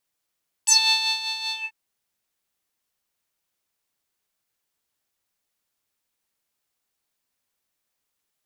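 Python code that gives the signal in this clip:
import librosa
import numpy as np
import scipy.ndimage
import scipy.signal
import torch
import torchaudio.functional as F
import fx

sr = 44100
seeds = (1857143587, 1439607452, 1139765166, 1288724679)

y = fx.sub_patch_tremolo(sr, seeds[0], note=81, wave='square', wave2='saw', interval_st=12, detune_cents=17, level2_db=-9.0, sub_db=-18.0, noise_db=-23.0, kind='bandpass', cutoff_hz=2200.0, q=9.2, env_oct=2.0, env_decay_s=0.11, env_sustain_pct=40, attack_ms=15.0, decay_s=0.54, sustain_db=-12.0, release_s=0.19, note_s=0.85, lfo_hz=5.2, tremolo_db=6)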